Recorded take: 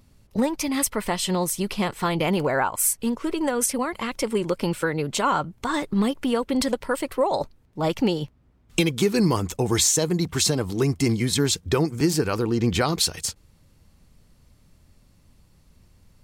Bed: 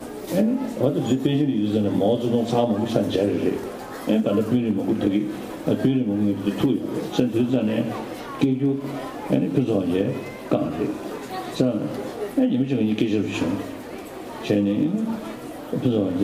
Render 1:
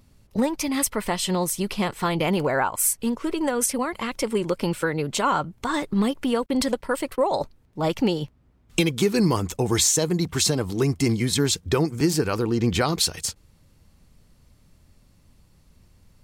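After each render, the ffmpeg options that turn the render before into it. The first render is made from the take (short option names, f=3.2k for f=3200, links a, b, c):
-filter_complex "[0:a]asettb=1/sr,asplit=3[a][b][c];[a]atrim=end=6.464[d];[b]atrim=start=6.46:end=7.35,asetpts=PTS-STARTPTS,afade=t=in:d=0.004:c=qsin,afade=t=out:st=0.886:d=0.004:c=qsin,agate=range=-34dB:threshold=-40dB:ratio=16:release=100:detection=peak[e];[c]atrim=start=7.346[f];[d][e]acrossfade=d=0.004:c1=hsin:c2=qsin[g];[g][f]acrossfade=d=0.004:c1=qsin:c2=hsin"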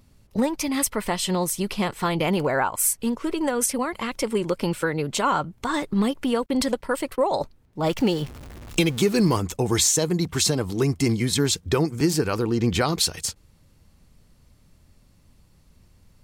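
-filter_complex "[0:a]asettb=1/sr,asplit=3[a][b][c];[a]atrim=end=7.864[d];[b]atrim=start=7.86:end=9.38,asetpts=PTS-STARTPTS,afade=t=in:d=0.004:c=qsin,afade=t=out:st=1.516:d=0.004:c=qsin,aeval=exprs='val(0)+0.5*0.0178*sgn(val(0))':c=same[e];[c]atrim=start=9.376[f];[d][e]acrossfade=d=0.004:c1=hsin:c2=qsin[g];[g][f]acrossfade=d=0.004:c1=qsin:c2=hsin"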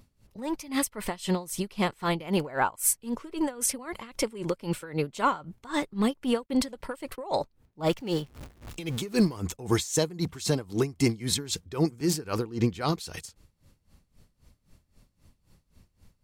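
-af "asoftclip=type=tanh:threshold=-8dB,aeval=exprs='val(0)*pow(10,-19*(0.5-0.5*cos(2*PI*3.8*n/s))/20)':c=same"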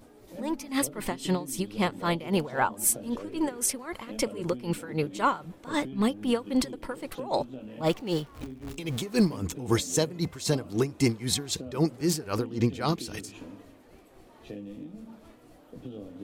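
-filter_complex "[1:a]volume=-20.5dB[a];[0:a][a]amix=inputs=2:normalize=0"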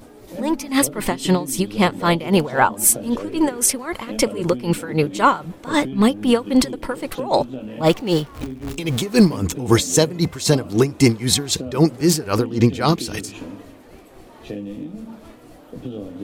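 -af "volume=10dB,alimiter=limit=-2dB:level=0:latency=1"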